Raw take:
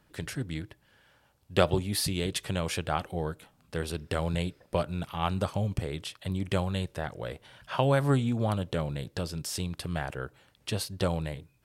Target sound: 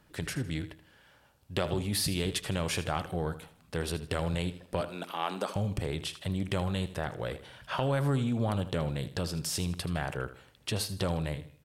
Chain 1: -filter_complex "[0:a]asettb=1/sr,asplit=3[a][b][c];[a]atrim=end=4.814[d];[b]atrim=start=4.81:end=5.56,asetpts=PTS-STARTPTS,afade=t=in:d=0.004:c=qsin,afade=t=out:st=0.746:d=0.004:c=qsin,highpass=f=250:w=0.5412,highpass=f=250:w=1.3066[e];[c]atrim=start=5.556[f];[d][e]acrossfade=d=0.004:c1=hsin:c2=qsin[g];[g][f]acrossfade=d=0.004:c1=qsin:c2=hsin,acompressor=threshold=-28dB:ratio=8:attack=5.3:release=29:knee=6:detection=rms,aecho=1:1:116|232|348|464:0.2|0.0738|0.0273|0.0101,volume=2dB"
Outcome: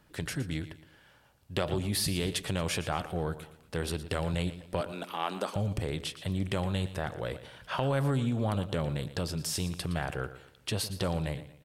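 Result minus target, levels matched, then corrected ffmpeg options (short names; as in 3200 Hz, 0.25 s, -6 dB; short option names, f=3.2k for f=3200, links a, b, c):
echo 37 ms late
-filter_complex "[0:a]asettb=1/sr,asplit=3[a][b][c];[a]atrim=end=4.814[d];[b]atrim=start=4.81:end=5.56,asetpts=PTS-STARTPTS,afade=t=in:d=0.004:c=qsin,afade=t=out:st=0.746:d=0.004:c=qsin,highpass=f=250:w=0.5412,highpass=f=250:w=1.3066[e];[c]atrim=start=5.556[f];[d][e]acrossfade=d=0.004:c1=hsin:c2=qsin[g];[g][f]acrossfade=d=0.004:c1=qsin:c2=hsin,acompressor=threshold=-28dB:ratio=8:attack=5.3:release=29:knee=6:detection=rms,aecho=1:1:79|158|237|316:0.2|0.0738|0.0273|0.0101,volume=2dB"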